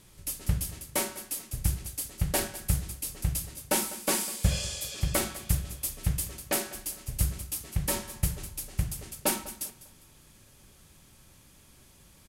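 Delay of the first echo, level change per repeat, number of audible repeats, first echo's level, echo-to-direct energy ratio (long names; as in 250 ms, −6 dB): 200 ms, −9.5 dB, 2, −17.0 dB, −16.5 dB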